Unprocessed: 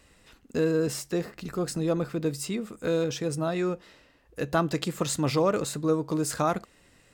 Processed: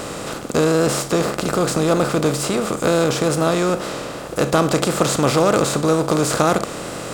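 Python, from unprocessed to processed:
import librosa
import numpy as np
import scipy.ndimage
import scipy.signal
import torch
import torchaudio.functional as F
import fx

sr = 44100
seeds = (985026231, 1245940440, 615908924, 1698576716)

y = fx.bin_compress(x, sr, power=0.4)
y = fx.wow_flutter(y, sr, seeds[0], rate_hz=2.1, depth_cents=43.0)
y = y * 10.0 ** (4.5 / 20.0)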